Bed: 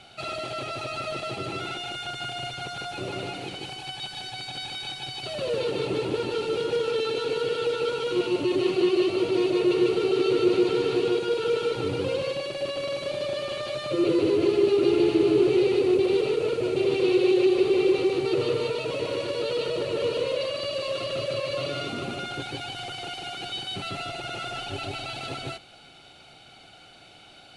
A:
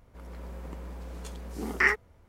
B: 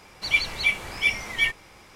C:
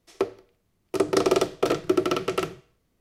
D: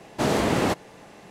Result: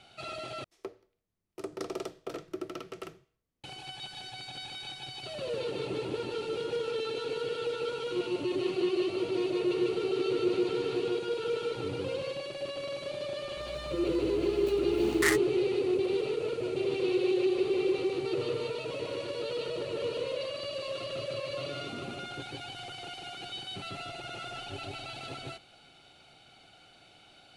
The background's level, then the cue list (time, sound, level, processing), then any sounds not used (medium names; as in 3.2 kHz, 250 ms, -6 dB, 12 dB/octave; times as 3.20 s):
bed -7 dB
0.64 s: replace with C -16 dB
13.42 s: add A -4.5 dB + delay time shaken by noise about 5.5 kHz, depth 0.043 ms
not used: B, D